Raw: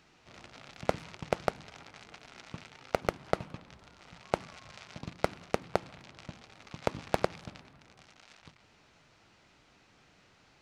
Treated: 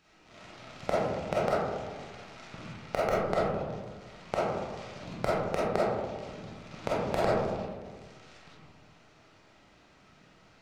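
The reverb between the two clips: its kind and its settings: algorithmic reverb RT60 1.5 s, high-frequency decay 0.25×, pre-delay 5 ms, DRR -8 dB; trim -5 dB

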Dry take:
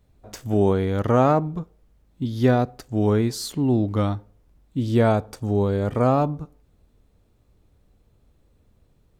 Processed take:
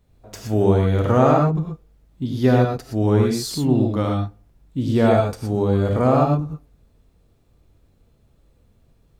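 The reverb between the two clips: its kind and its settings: gated-style reverb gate 140 ms rising, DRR 0.5 dB

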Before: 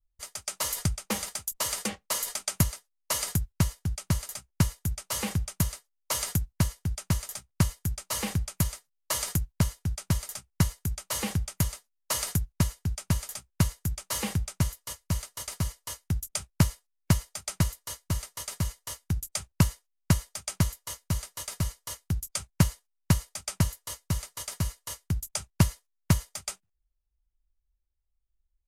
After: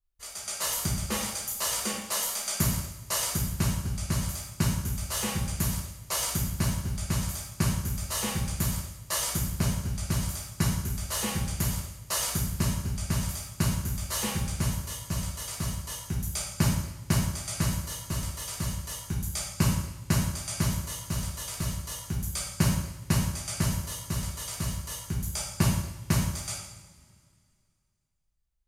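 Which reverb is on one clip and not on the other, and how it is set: two-slope reverb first 0.77 s, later 2.4 s, from -18 dB, DRR -7 dB; trim -6 dB

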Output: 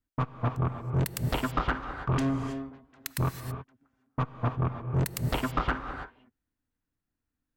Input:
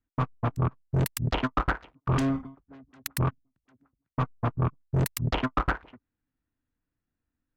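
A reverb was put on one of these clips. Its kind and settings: gated-style reverb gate 350 ms rising, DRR 7 dB; trim -2 dB

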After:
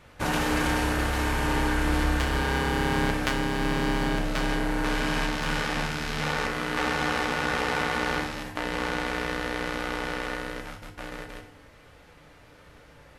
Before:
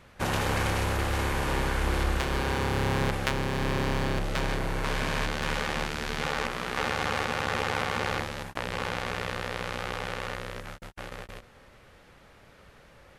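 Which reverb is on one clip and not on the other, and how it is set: FDN reverb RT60 0.64 s, low-frequency decay 1.25×, high-frequency decay 0.95×, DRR 2.5 dB

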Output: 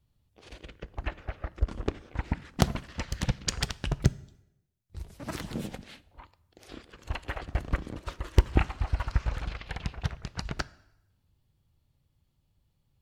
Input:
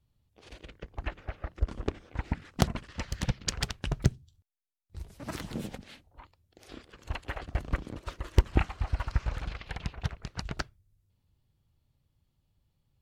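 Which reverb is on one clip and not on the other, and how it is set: plate-style reverb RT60 0.89 s, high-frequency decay 0.9×, DRR 18.5 dB; trim +1.5 dB

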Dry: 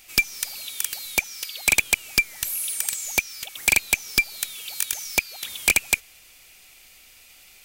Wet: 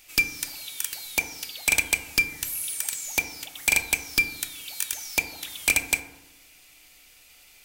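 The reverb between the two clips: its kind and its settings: FDN reverb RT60 0.9 s, low-frequency decay 1.3×, high-frequency decay 0.35×, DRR 6 dB; trim -3.5 dB

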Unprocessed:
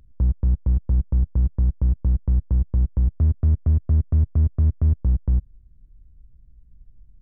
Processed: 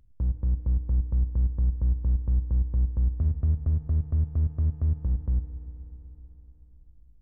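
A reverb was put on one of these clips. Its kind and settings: FDN reverb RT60 3.9 s, high-frequency decay 0.6×, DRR 10.5 dB; trim -7.5 dB

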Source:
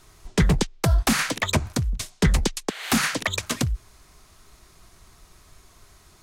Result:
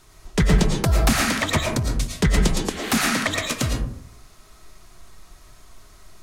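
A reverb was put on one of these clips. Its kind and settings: algorithmic reverb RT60 0.65 s, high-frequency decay 0.4×, pre-delay 70 ms, DRR 0.5 dB

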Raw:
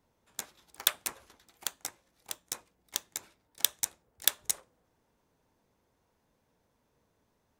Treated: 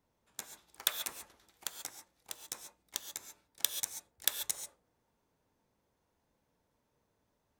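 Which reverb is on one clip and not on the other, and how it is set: gated-style reverb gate 160 ms rising, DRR 7 dB; trim -5 dB

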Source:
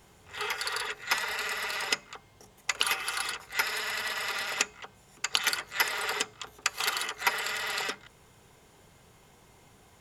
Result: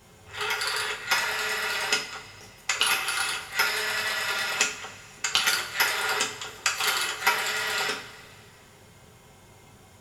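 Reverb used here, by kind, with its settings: two-slope reverb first 0.36 s, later 2.4 s, from -19 dB, DRR -1.5 dB; trim +1 dB

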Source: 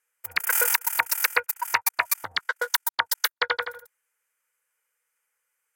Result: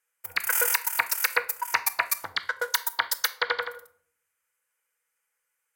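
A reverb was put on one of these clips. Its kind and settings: simulated room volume 850 m³, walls furnished, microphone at 0.71 m; trim -2 dB

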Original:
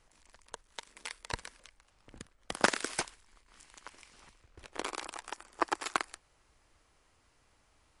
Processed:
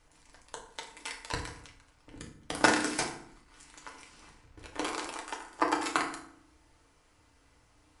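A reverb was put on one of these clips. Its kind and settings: FDN reverb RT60 0.64 s, low-frequency decay 1.55×, high-frequency decay 0.65×, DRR -1 dB

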